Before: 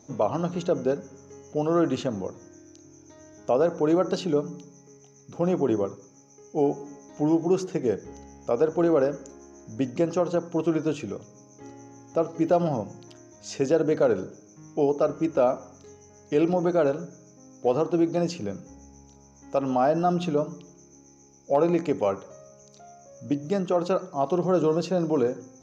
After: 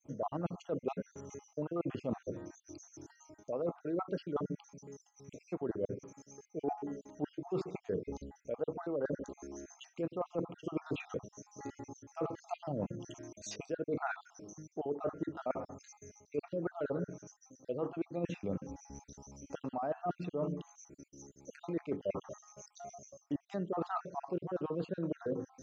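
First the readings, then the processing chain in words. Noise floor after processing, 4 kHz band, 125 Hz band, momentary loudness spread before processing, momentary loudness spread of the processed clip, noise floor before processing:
-74 dBFS, -14.0 dB, -11.5 dB, 15 LU, 15 LU, -54 dBFS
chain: random holes in the spectrogram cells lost 51%; expander -56 dBFS; reverse; compression 16:1, threshold -35 dBFS, peak gain reduction 18.5 dB; reverse; low-pass that closes with the level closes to 2.3 kHz, closed at -36 dBFS; trim +2.5 dB

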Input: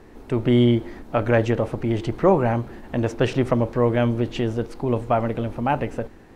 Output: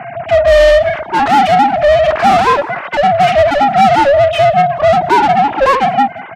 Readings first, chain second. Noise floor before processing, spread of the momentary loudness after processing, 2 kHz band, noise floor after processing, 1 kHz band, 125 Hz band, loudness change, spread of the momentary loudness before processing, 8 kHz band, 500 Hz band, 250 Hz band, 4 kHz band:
-46 dBFS, 6 LU, +16.5 dB, -28 dBFS, +20.0 dB, -1.0 dB, +12.0 dB, 9 LU, no reading, +13.0 dB, +1.0 dB, +15.0 dB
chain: formants replaced by sine waves; ring modulator 280 Hz; in parallel at -10.5 dB: saturation -19.5 dBFS, distortion -10 dB; on the sum: overdrive pedal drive 34 dB, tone 2.8 kHz, clips at -6 dBFS; harmonic-percussive split harmonic +9 dB; on a send: feedback delay 181 ms, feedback 16%, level -23 dB; on the sum: trim -3.5 dB

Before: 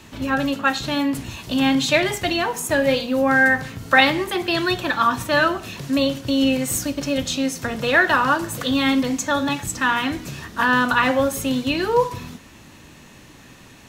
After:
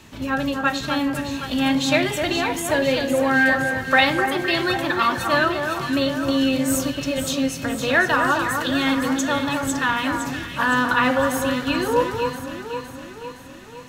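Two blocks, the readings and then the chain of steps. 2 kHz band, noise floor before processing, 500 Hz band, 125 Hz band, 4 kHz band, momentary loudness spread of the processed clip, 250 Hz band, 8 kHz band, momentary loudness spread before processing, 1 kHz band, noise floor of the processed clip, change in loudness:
-0.5 dB, -46 dBFS, -0.5 dB, -0.5 dB, -1.0 dB, 9 LU, -0.5 dB, -1.0 dB, 8 LU, -0.5 dB, -38 dBFS, -1.0 dB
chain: echo whose repeats swap between lows and highs 256 ms, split 1.7 kHz, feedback 73%, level -5 dB; trim -2 dB

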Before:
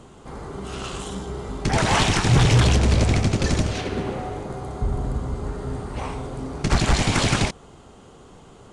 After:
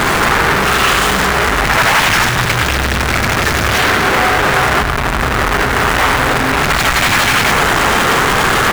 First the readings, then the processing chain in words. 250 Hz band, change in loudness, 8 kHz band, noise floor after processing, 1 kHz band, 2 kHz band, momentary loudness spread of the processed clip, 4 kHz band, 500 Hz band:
+6.0 dB, +11.0 dB, +11.5 dB, -15 dBFS, +16.5 dB, +19.0 dB, 4 LU, +12.5 dB, +11.0 dB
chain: one-bit comparator; peaking EQ 1.6 kHz +13.5 dB 2 oct; delay 103 ms -9 dB; trim +4 dB

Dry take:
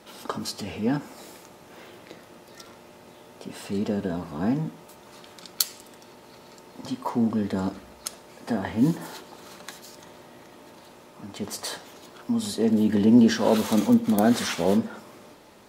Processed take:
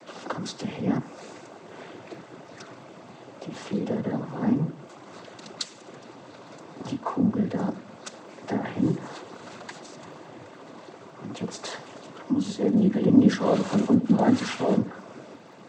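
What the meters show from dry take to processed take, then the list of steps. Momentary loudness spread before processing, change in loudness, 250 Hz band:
22 LU, -1.0 dB, -1.0 dB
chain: noise-vocoded speech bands 16; in parallel at +1 dB: compression, threshold -37 dBFS, peak gain reduction 24.5 dB; on the sum: crackle 16 per s -46 dBFS; treble shelf 3.4 kHz -8.5 dB; trim -1.5 dB

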